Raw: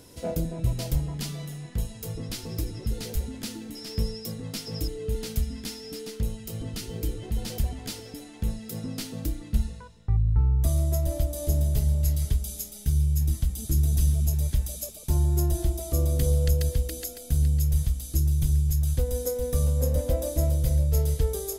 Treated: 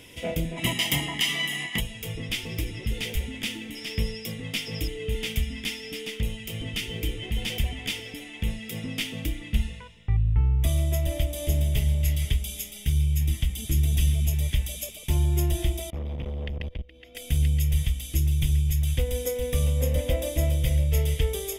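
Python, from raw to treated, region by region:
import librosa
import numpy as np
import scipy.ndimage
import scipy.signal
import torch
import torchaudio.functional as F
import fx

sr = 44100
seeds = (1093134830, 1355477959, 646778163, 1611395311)

y = fx.spec_clip(x, sr, under_db=16, at=(0.56, 1.79), fade=0.02)
y = fx.bessel_highpass(y, sr, hz=190.0, order=2, at=(0.56, 1.79), fade=0.02)
y = fx.comb(y, sr, ms=1.0, depth=0.65, at=(0.56, 1.79), fade=0.02)
y = fx.chain(y, sr, fx.air_absorb(metres=340.0),
    fx.level_steps(step_db=24),
    fx.tube_stage(drive_db=28.0, bias=0.7), at=(15.9, 17.15))
y = fx.band_shelf(y, sr, hz=2600.0, db=15.0, octaves=1.1)
y = fx.notch(y, sr, hz=4100.0, q=6.7)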